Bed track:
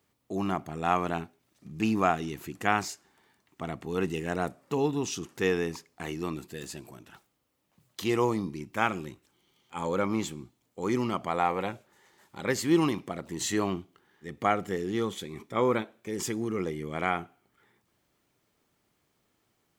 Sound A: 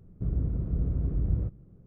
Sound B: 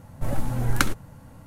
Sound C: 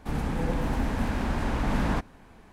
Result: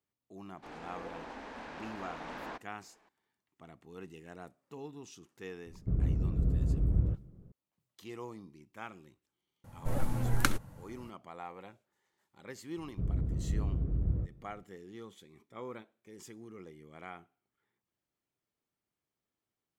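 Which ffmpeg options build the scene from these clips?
ffmpeg -i bed.wav -i cue0.wav -i cue1.wav -i cue2.wav -filter_complex "[1:a]asplit=2[link_01][link_02];[0:a]volume=-18dB[link_03];[3:a]acrossover=split=310 6800:gain=0.0708 1 0.0708[link_04][link_05][link_06];[link_04][link_05][link_06]amix=inputs=3:normalize=0,atrim=end=2.52,asetpts=PTS-STARTPTS,volume=-10.5dB,afade=type=in:duration=0.004:curve=hsin,afade=type=out:start_time=2.516:duration=0.004:curve=hsin,adelay=570[link_07];[link_01]atrim=end=1.86,asetpts=PTS-STARTPTS,volume=-1dB,afade=type=in:duration=0.004:curve=hsin,afade=type=out:start_time=1.856:duration=0.004:curve=hsin,adelay=5660[link_08];[2:a]atrim=end=1.46,asetpts=PTS-STARTPTS,volume=-6dB,afade=type=in:duration=0.004:curve=hsin,afade=type=out:start_time=1.456:duration=0.004:curve=hsin,adelay=9640[link_09];[link_02]atrim=end=1.86,asetpts=PTS-STARTPTS,volume=-4dB,afade=type=in:duration=0.004:curve=hsin,afade=type=out:start_time=1.856:duration=0.004:curve=hsin,adelay=12770[link_10];[link_03][link_07][link_08][link_09][link_10]amix=inputs=5:normalize=0" out.wav

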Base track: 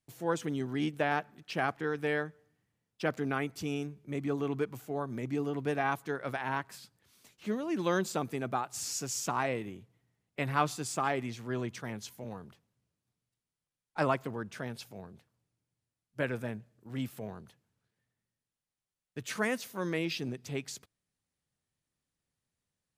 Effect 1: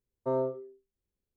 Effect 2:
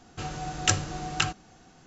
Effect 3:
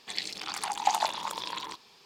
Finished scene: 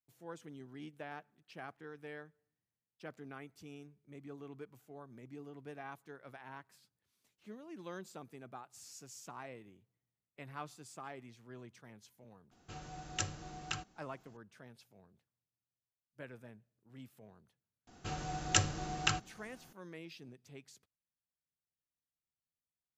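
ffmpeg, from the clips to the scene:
ffmpeg -i bed.wav -i cue0.wav -i cue1.wav -filter_complex "[2:a]asplit=2[link_01][link_02];[0:a]volume=-16.5dB[link_03];[link_01]atrim=end=1.86,asetpts=PTS-STARTPTS,volume=-13.5dB,afade=type=in:duration=0.004:curve=hsin,afade=type=out:start_time=1.856:duration=0.004:curve=hsin,adelay=12510[link_04];[link_02]atrim=end=1.86,asetpts=PTS-STARTPTS,volume=-5.5dB,afade=type=in:duration=0.004:curve=hsin,afade=type=out:start_time=1.856:duration=0.004:curve=hsin,adelay=17870[link_05];[link_03][link_04][link_05]amix=inputs=3:normalize=0" out.wav

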